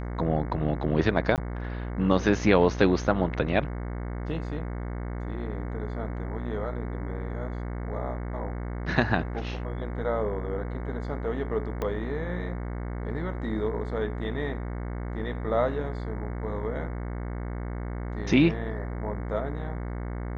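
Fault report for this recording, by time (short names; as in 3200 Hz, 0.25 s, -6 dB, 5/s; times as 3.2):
buzz 60 Hz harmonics 37 -33 dBFS
1.36–1.38 gap 18 ms
11.82 pop -17 dBFS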